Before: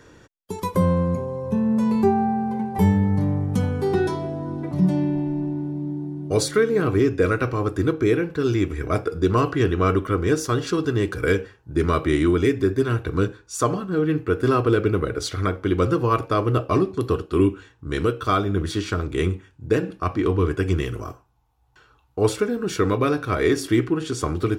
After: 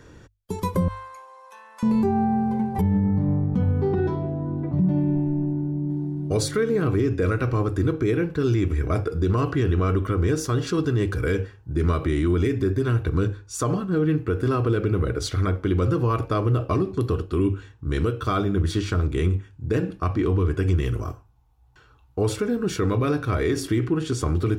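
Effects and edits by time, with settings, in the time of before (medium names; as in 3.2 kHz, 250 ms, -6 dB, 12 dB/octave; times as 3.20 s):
0.88–1.83 s: high-pass 1 kHz 24 dB/octave
2.81–5.90 s: tape spacing loss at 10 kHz 30 dB
whole clip: bass shelf 150 Hz +11 dB; hum notches 50/100 Hz; peak limiter -12.5 dBFS; trim -1.5 dB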